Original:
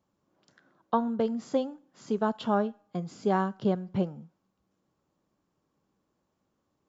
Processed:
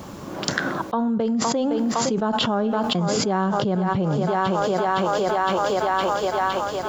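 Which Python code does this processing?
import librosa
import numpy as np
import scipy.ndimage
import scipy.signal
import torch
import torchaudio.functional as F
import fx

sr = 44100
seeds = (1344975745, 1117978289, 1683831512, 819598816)

p1 = x + fx.echo_thinned(x, sr, ms=512, feedback_pct=76, hz=320.0, wet_db=-18, dry=0)
y = fx.env_flatten(p1, sr, amount_pct=100)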